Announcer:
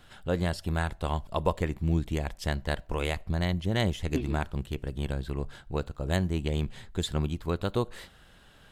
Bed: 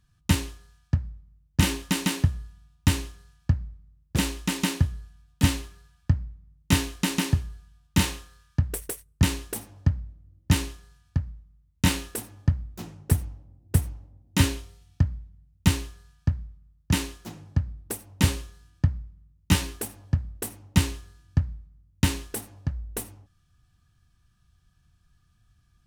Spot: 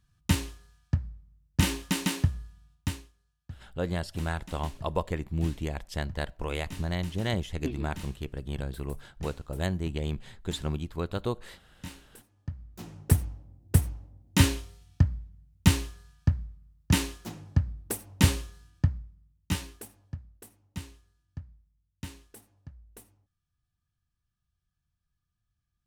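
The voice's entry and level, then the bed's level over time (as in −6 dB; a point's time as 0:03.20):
3.50 s, −2.5 dB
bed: 0:02.72 −3 dB
0:03.12 −20.5 dB
0:12.30 −20.5 dB
0:12.97 0 dB
0:18.60 0 dB
0:20.49 −18 dB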